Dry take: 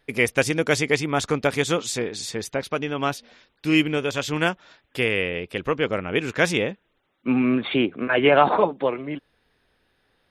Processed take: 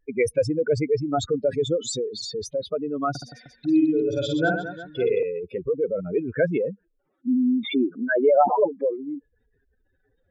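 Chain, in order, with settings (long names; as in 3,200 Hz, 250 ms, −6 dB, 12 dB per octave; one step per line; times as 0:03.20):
expanding power law on the bin magnitudes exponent 3.8
0:03.10–0:05.23: reverse bouncing-ball delay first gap 50 ms, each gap 1.4×, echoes 5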